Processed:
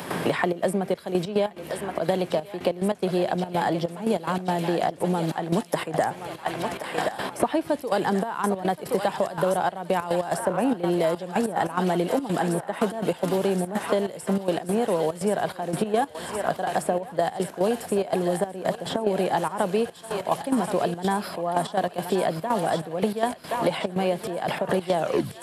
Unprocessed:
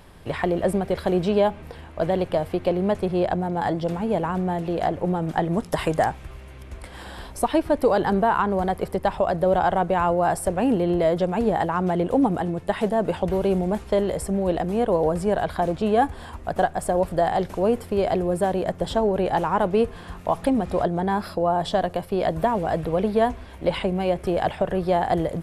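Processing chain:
turntable brake at the end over 0.47 s
high-pass filter 140 Hz 24 dB per octave
high-shelf EQ 4,700 Hz +8 dB
on a send: feedback echo with a high-pass in the loop 1,074 ms, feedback 85%, high-pass 920 Hz, level −8 dB
on the sum: gate pattern ".xxxx.xxx..x.x" 144 BPM −12 dB
multiband upward and downward compressor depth 100%
level −2 dB

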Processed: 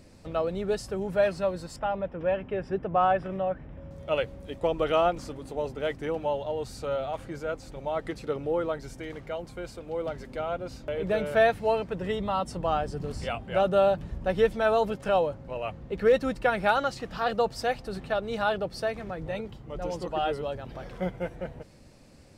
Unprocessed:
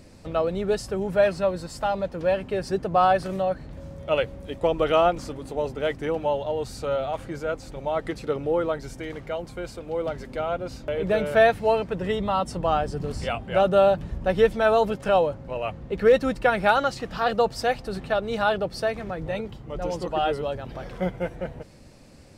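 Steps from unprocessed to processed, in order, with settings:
0:01.76–0:03.91: Savitzky-Golay smoothing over 25 samples
level −4 dB

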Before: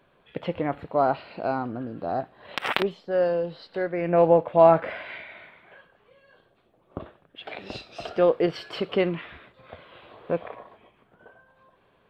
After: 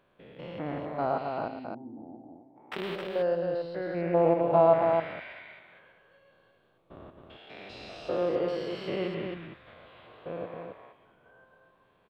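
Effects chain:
spectrum averaged block by block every 200 ms
0:01.48–0:02.72: formant resonators in series u
loudspeakers that aren't time-aligned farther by 38 metres −9 dB, 91 metres −5 dB
level −4 dB

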